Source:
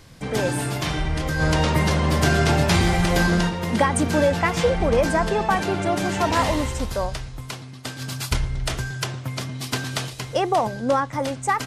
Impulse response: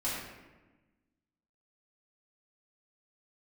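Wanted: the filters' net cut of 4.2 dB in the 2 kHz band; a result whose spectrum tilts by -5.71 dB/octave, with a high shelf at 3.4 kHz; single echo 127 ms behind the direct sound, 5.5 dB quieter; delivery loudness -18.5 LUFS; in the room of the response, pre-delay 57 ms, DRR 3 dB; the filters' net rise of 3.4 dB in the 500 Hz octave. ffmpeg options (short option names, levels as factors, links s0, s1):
-filter_complex "[0:a]equalizer=f=500:t=o:g=4.5,equalizer=f=2000:t=o:g=-5,highshelf=f=3400:g=-3,aecho=1:1:127:0.531,asplit=2[s0][s1];[1:a]atrim=start_sample=2205,adelay=57[s2];[s1][s2]afir=irnorm=-1:irlink=0,volume=0.355[s3];[s0][s3]amix=inputs=2:normalize=0"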